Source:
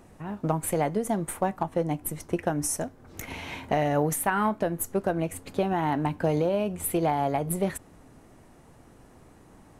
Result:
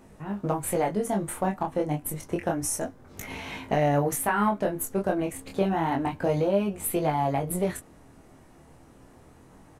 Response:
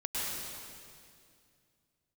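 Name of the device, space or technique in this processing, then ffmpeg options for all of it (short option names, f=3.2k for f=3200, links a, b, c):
double-tracked vocal: -filter_complex "[0:a]asplit=2[a][b];[b]adelay=15,volume=-12dB[c];[a][c]amix=inputs=2:normalize=0,flanger=delay=19.5:depth=7.3:speed=0.29,volume=3dB"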